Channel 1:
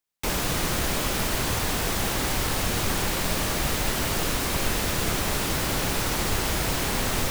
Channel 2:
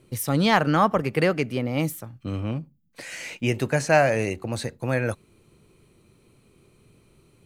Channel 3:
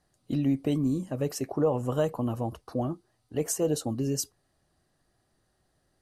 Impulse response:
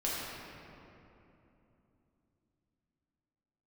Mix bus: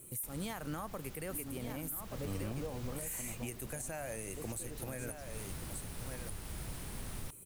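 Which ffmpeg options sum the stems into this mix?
-filter_complex "[0:a]acrossover=split=200[a][b];[b]acompressor=threshold=-35dB:ratio=6[c];[a][c]amix=inputs=2:normalize=0,volume=-13.5dB[d];[1:a]aexciter=amount=10.9:drive=7.9:freq=7.4k,volume=-3.5dB,asplit=2[e][f];[f]volume=-21dB[g];[2:a]lowpass=3.5k,alimiter=limit=-21dB:level=0:latency=1,adelay=1000,volume=-6dB[h];[e][h]amix=inputs=2:normalize=0,acompressor=threshold=-37dB:ratio=2,volume=0dB[i];[g]aecho=0:1:1180:1[j];[d][i][j]amix=inputs=3:normalize=0,alimiter=level_in=6dB:limit=-24dB:level=0:latency=1:release=278,volume=-6dB"

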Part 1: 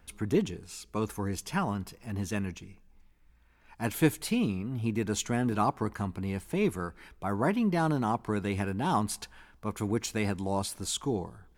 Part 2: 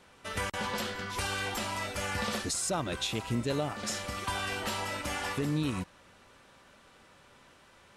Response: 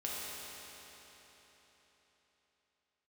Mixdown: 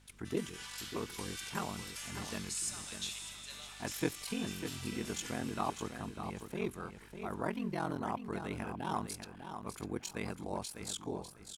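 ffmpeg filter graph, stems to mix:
-filter_complex "[0:a]aeval=exprs='val(0)*sin(2*PI*22*n/s)':c=same,volume=-5dB,asplit=3[a][b][c];[b]volume=-8.5dB[d];[1:a]highpass=1.4k,equalizer=f=9.8k:t=o:w=2.7:g=10.5,aeval=exprs='val(0)+0.00631*(sin(2*PI*50*n/s)+sin(2*PI*2*50*n/s)/2+sin(2*PI*3*50*n/s)/3+sin(2*PI*4*50*n/s)/4+sin(2*PI*5*50*n/s)/5)':c=same,volume=-16.5dB,asplit=3[e][f][g];[f]volume=-4.5dB[h];[g]volume=-10dB[i];[c]apad=whole_len=351438[j];[e][j]sidechaincompress=threshold=-48dB:ratio=3:attack=16:release=112[k];[2:a]atrim=start_sample=2205[l];[h][l]afir=irnorm=-1:irlink=0[m];[d][i]amix=inputs=2:normalize=0,aecho=0:1:599|1198|1797|2396:1|0.22|0.0484|0.0106[n];[a][k][m][n]amix=inputs=4:normalize=0,lowshelf=f=210:g=-6"

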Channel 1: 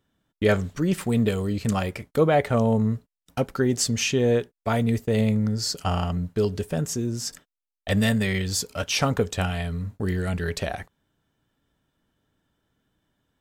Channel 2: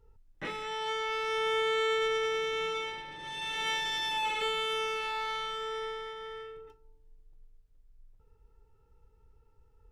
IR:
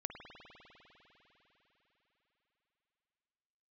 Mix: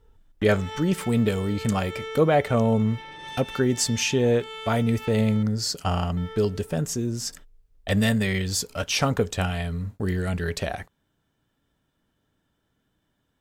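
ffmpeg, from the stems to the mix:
-filter_complex "[0:a]volume=0dB,asplit=2[a][b];[1:a]alimiter=level_in=7.5dB:limit=-24dB:level=0:latency=1,volume=-7.5dB,volume=3dB,asplit=3[c][d][e];[c]atrim=end=5.43,asetpts=PTS-STARTPTS,afade=t=out:st=5.426:d=0.004:c=hsin[f];[d]atrim=start=5.43:end=6.17,asetpts=PTS-STARTPTS,volume=0[g];[e]atrim=start=6.17,asetpts=PTS-STARTPTS,afade=t=in:d=0.004:c=hsin[h];[f][g][h]concat=n=3:v=0:a=1[i];[b]apad=whole_len=437370[j];[i][j]sidechaincompress=threshold=-28dB:ratio=8:attack=24:release=168[k];[a][k]amix=inputs=2:normalize=0"

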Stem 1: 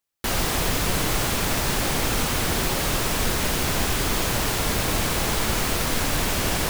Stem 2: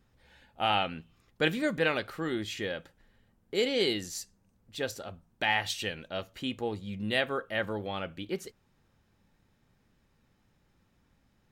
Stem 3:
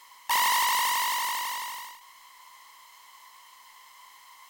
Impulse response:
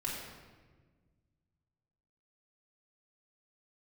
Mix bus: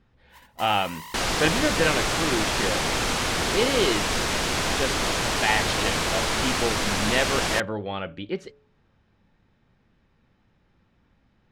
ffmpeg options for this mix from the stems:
-filter_complex "[0:a]lowpass=7.4k,lowshelf=f=250:g=-7.5,adelay=900,volume=1.5dB[a];[1:a]lowpass=3.8k,acontrast=34,volume=-0.5dB,asplit=2[b][c];[2:a]volume=-13.5dB[d];[c]apad=whole_len=202851[e];[d][e]sidechaingate=range=-33dB:threshold=-51dB:ratio=16:detection=peak[f];[a][b][f]amix=inputs=3:normalize=0,bandreject=f=142.8:t=h:w=4,bandreject=f=285.6:t=h:w=4,bandreject=f=428.4:t=h:w=4,bandreject=f=571.2:t=h:w=4"

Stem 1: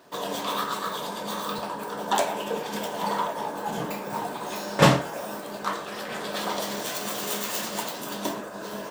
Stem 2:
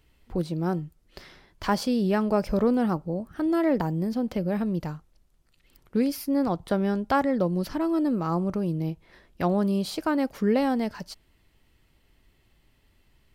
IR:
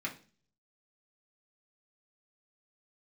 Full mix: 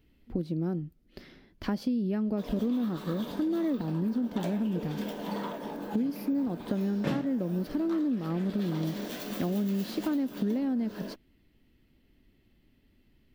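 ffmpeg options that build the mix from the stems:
-filter_complex "[0:a]adelay=2250,volume=-6.5dB[a];[1:a]volume=-3.5dB[b];[a][b]amix=inputs=2:normalize=0,equalizer=f=250:t=o:w=1:g=11,equalizer=f=1k:t=o:w=1:g=-7,equalizer=f=8k:t=o:w=1:g=-10,acompressor=threshold=-27dB:ratio=6"

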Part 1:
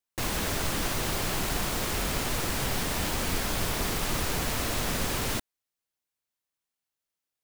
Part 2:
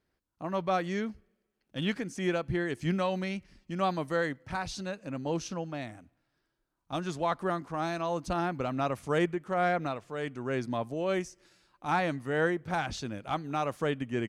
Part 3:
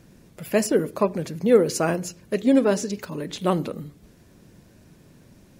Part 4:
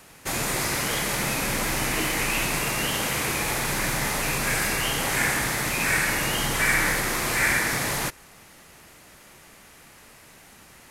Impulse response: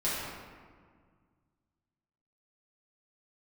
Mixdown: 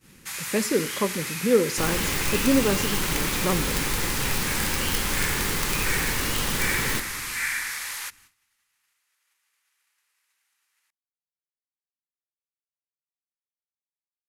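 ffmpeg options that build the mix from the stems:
-filter_complex "[0:a]aeval=exprs='(mod(9.44*val(0)+1,2)-1)/9.44':c=same,adelay=1600,volume=1dB,asplit=2[a][b];[b]volume=-16.5dB[c];[2:a]volume=-2.5dB[d];[3:a]highpass=1.4k,volume=-4dB[e];[4:a]atrim=start_sample=2205[f];[c][f]afir=irnorm=-1:irlink=0[g];[a][d][e][g]amix=inputs=4:normalize=0,equalizer=f=660:w=7.8:g=-15,agate=range=-18dB:threshold=-53dB:ratio=16:detection=peak"

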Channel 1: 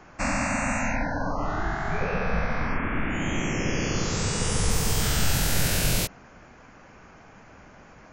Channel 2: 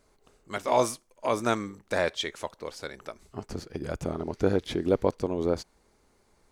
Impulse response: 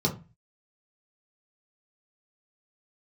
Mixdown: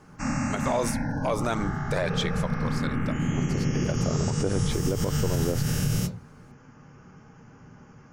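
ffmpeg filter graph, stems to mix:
-filter_complex "[0:a]volume=-6dB,asplit=2[a][b];[b]volume=-11dB[c];[1:a]aphaser=in_gain=1:out_gain=1:delay=2.3:decay=0.34:speed=1.8:type=triangular,volume=2dB[d];[2:a]atrim=start_sample=2205[e];[c][e]afir=irnorm=-1:irlink=0[f];[a][d][f]amix=inputs=3:normalize=0,alimiter=limit=-16dB:level=0:latency=1:release=76"

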